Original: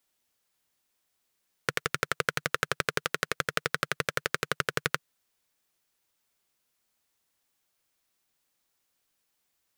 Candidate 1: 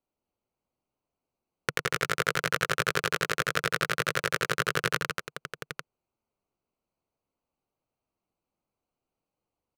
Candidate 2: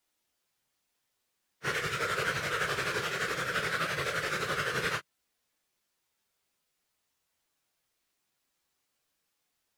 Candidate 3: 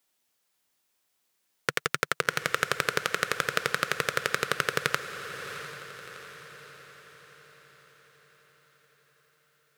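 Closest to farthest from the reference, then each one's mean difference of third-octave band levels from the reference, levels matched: 3, 1, 2; 1.5, 3.0, 4.5 dB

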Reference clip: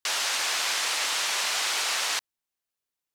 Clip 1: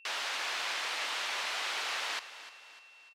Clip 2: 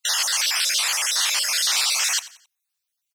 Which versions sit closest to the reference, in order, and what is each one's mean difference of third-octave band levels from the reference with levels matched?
1, 2; 3.5, 7.0 dB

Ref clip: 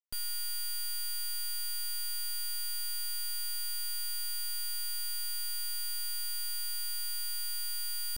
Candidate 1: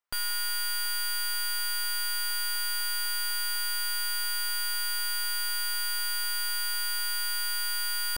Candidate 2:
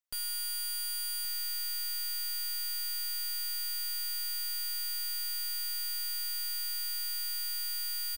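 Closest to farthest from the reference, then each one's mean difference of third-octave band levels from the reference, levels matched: 2, 1; 1.5, 4.0 dB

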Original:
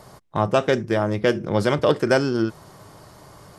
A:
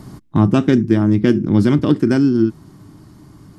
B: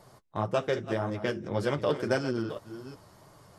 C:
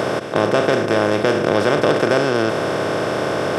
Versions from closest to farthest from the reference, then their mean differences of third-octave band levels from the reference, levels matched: B, A, C; 2.5, 7.5, 10.5 dB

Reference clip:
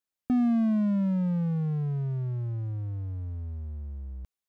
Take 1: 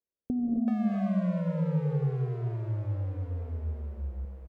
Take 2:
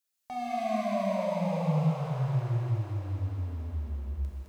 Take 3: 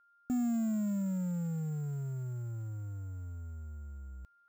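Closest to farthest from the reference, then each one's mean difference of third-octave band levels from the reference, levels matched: 3, 1, 2; 3.5, 6.5, 11.0 dB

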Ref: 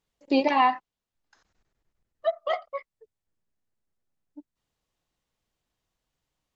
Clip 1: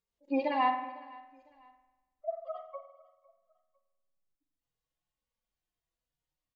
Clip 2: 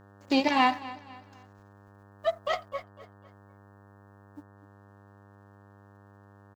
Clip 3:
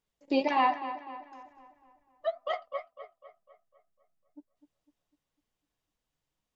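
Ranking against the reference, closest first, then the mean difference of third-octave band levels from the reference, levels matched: 3, 1, 2; 2.0, 5.0, 7.5 dB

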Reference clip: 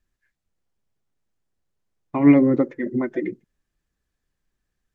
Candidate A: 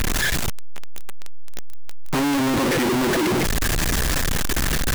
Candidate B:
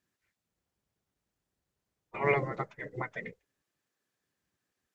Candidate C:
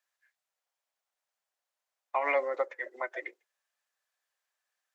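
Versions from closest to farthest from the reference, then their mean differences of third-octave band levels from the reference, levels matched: B, C, A; 8.0, 10.5, 20.5 dB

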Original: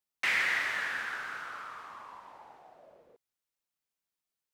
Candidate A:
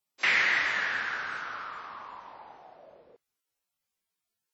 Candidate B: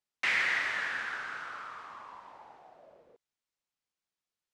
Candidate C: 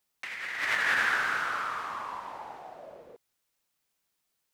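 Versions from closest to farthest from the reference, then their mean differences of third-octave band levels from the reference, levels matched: B, A, C; 1.0, 2.5, 6.5 dB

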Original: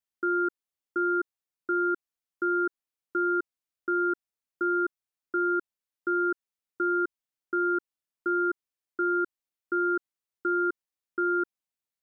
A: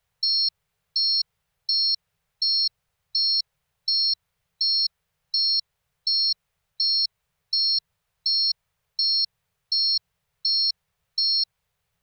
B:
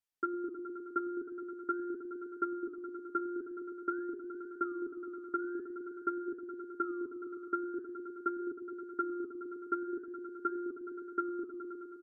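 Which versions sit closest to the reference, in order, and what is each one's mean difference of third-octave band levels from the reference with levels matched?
B, A; 3.5, 12.0 dB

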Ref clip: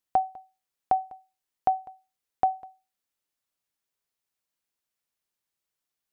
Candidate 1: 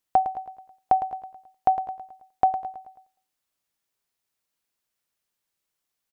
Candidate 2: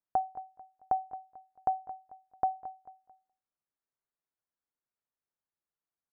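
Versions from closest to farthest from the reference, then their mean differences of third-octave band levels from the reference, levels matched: 2, 1; 1.5, 3.0 dB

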